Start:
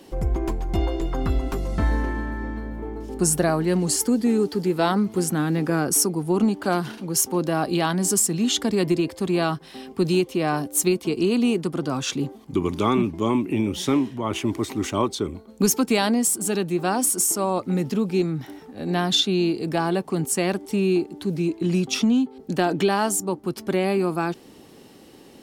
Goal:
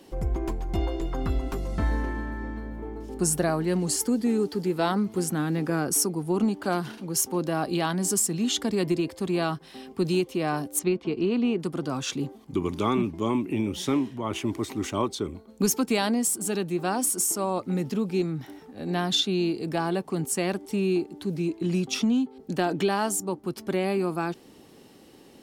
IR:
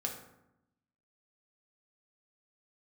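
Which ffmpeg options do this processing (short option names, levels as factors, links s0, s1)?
-filter_complex "[0:a]asettb=1/sr,asplit=3[s0][s1][s2];[s0]atrim=end=10.794[s3];[s1]atrim=start=10.79:end=11.6,asetpts=PTS-STARTPTS,afade=t=in:d=0.004:c=qsin,afade=t=out:st=0.806:d=0.004:c=qsin,lowpass=3000[s4];[s2]atrim=start=11.596[s5];[s3][s4]acrossfade=d=0.004:c1=hsin:c2=qsin[s6];[s6][s5]acrossfade=d=0.004:c1=qsin:c2=hsin,volume=0.631"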